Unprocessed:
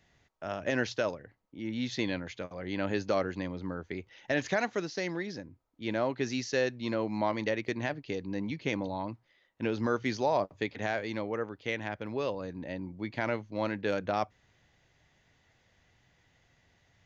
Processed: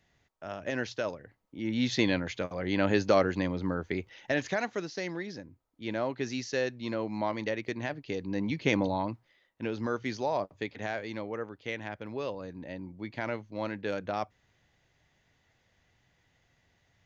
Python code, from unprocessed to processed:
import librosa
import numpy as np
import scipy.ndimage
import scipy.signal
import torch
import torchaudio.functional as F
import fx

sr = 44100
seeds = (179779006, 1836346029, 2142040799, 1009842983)

y = fx.gain(x, sr, db=fx.line((0.94, -3.0), (1.87, 5.5), (3.99, 5.5), (4.49, -1.5), (7.88, -1.5), (8.82, 6.5), (9.62, -2.5)))